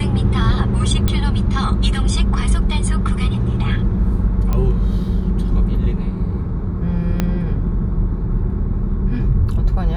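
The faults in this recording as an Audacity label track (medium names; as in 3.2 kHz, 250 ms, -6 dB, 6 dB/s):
1.080000	1.080000	pop -6 dBFS
4.530000	4.530000	pop -9 dBFS
7.200000	7.200000	pop -5 dBFS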